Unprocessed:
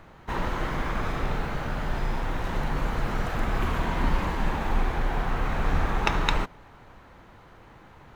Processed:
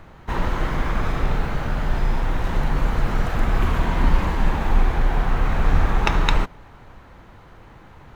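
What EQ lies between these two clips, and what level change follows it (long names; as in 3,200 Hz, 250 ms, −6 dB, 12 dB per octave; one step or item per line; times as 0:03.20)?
low-shelf EQ 130 Hz +5.5 dB
+3.0 dB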